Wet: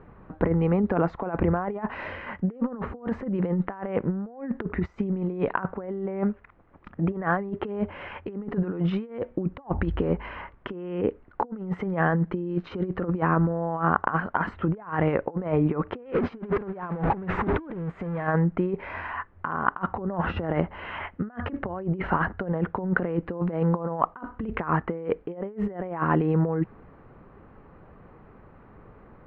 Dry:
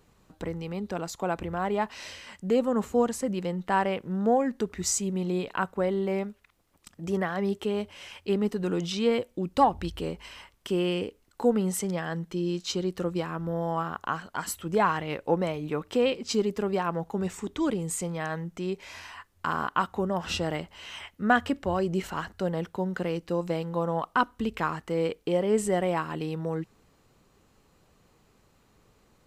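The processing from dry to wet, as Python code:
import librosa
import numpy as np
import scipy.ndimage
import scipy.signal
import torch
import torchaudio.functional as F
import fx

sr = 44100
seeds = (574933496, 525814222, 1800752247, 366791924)

y = fx.zero_step(x, sr, step_db=-30.0, at=(16.02, 18.27))
y = fx.over_compress(y, sr, threshold_db=-33.0, ratio=-0.5)
y = scipy.signal.sosfilt(scipy.signal.butter(4, 1800.0, 'lowpass', fs=sr, output='sos'), y)
y = y * 10.0 ** (7.5 / 20.0)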